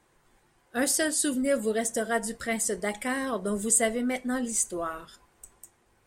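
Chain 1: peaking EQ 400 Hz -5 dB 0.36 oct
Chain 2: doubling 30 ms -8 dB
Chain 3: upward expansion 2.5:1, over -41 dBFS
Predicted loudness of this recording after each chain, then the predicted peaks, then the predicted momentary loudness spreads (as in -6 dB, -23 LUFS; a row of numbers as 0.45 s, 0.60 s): -28.0 LUFS, -27.0 LUFS, -33.5 LUFS; -9.0 dBFS, -7.0 dBFS, -10.0 dBFS; 8 LU, 8 LU, 18 LU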